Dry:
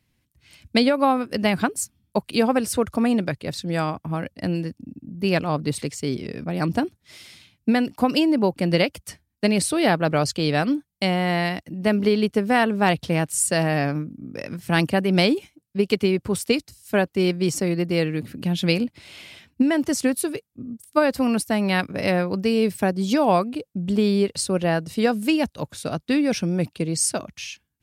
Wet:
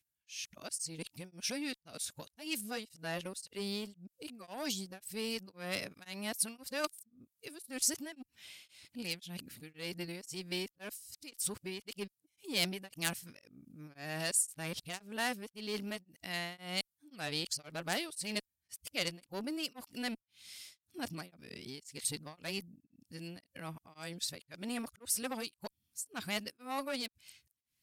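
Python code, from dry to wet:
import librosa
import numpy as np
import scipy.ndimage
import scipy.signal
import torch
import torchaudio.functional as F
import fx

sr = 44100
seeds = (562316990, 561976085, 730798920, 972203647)

y = np.flip(x).copy()
y = fx.high_shelf(y, sr, hz=10000.0, db=-6.0)
y = fx.cheby_harmonics(y, sr, harmonics=(3, 4, 5), levels_db=(-13, -41, -17), full_scale_db=-5.0)
y = scipy.signal.lfilter([1.0, -0.9], [1.0], y)
y = y * np.abs(np.cos(np.pi * 1.9 * np.arange(len(y)) / sr))
y = F.gain(torch.from_numpy(y), 1.0).numpy()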